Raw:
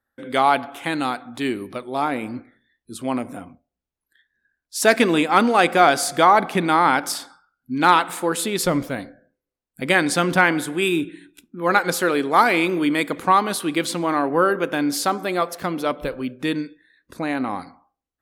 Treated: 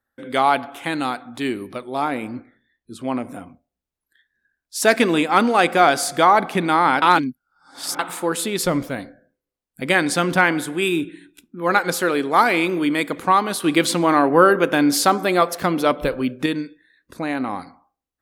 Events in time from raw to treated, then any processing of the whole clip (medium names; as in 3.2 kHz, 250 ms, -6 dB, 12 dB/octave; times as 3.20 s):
2.27–3.24 s: low-pass 3.9 kHz 6 dB/octave
7.02–7.99 s: reverse
13.64–16.46 s: gain +5 dB